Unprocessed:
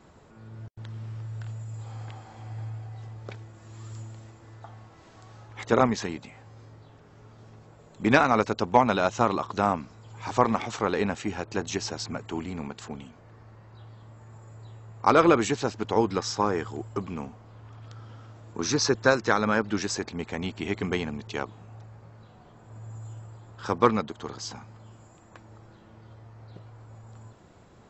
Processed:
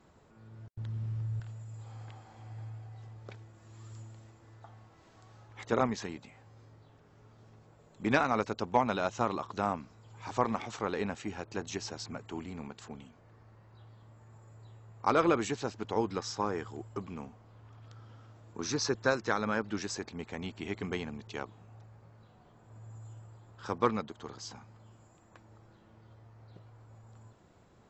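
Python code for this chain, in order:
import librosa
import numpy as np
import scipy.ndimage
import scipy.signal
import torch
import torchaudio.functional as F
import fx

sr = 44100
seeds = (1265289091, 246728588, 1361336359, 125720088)

y = fx.low_shelf(x, sr, hz=230.0, db=11.5, at=(0.73, 1.4))
y = y * 10.0 ** (-7.5 / 20.0)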